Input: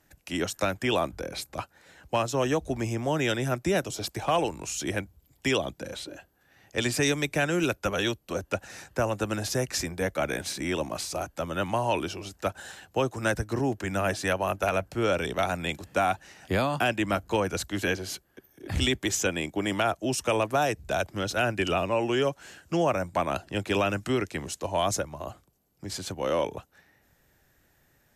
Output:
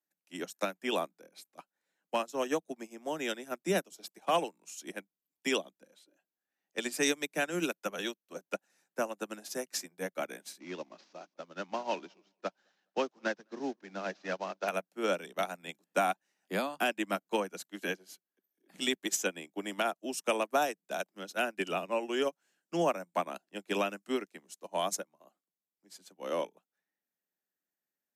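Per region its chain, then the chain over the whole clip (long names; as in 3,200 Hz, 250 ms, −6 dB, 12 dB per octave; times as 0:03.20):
0:10.59–0:14.68: variable-slope delta modulation 32 kbit/s + repeating echo 208 ms, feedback 36%, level −19.5 dB + one half of a high-frequency compander decoder only
whole clip: Butterworth high-pass 170 Hz 72 dB per octave; high-shelf EQ 9,700 Hz +9.5 dB; expander for the loud parts 2.5 to 1, over −40 dBFS; level −2 dB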